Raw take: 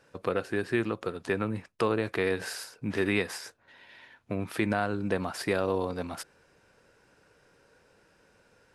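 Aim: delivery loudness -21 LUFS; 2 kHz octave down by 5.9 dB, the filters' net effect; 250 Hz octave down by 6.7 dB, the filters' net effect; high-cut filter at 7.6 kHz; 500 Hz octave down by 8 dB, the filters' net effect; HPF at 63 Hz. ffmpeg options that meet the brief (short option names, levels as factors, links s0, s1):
-af "highpass=63,lowpass=7600,equalizer=f=250:t=o:g=-6.5,equalizer=f=500:t=o:g=-7.5,equalizer=f=2000:t=o:g=-7,volume=6.31"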